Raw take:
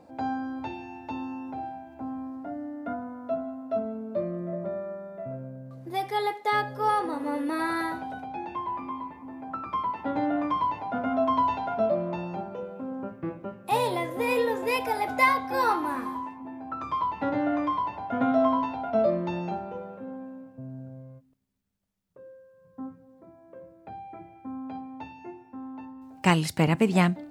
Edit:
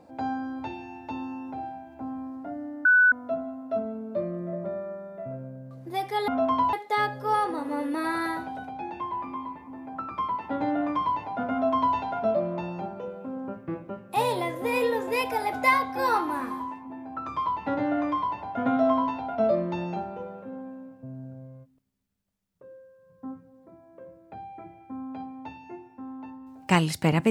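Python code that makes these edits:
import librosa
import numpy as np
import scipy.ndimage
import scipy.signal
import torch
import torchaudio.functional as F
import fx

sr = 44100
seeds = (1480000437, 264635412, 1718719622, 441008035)

y = fx.edit(x, sr, fx.bleep(start_s=2.85, length_s=0.27, hz=1490.0, db=-14.5),
    fx.duplicate(start_s=11.07, length_s=0.45, to_s=6.28), tone=tone)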